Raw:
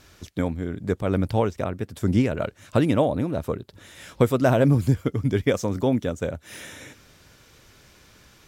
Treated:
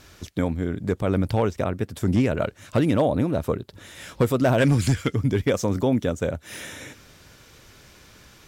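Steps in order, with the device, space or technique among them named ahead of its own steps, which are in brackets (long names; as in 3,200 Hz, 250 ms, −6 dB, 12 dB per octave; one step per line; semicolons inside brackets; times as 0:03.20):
0:04.58–0:05.15: flat-topped bell 3,700 Hz +11 dB 3 octaves
clipper into limiter (hard clipping −12 dBFS, distortion −21 dB; brickwall limiter −15.5 dBFS, peak gain reduction 3.5 dB)
level +3 dB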